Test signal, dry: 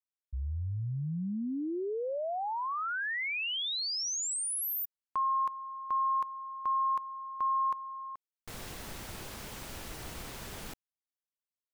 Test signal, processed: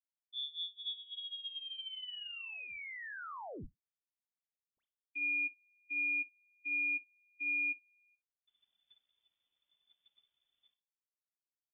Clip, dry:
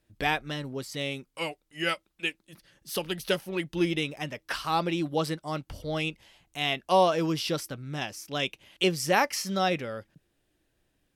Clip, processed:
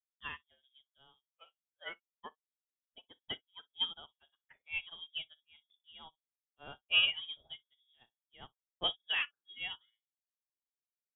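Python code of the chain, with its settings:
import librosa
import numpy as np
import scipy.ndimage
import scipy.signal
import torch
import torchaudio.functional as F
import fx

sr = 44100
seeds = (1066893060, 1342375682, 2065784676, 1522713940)

p1 = fx.bin_expand(x, sr, power=1.5)
p2 = fx.leveller(p1, sr, passes=1)
p3 = fx.hum_notches(p2, sr, base_hz=50, count=3)
p4 = p3 + fx.room_early_taps(p3, sr, ms=(33, 59), db=(-12.0, -12.0), dry=0)
p5 = fx.freq_invert(p4, sr, carrier_hz=3500)
p6 = fx.upward_expand(p5, sr, threshold_db=-46.0, expansion=2.5)
y = p6 * 10.0 ** (-6.5 / 20.0)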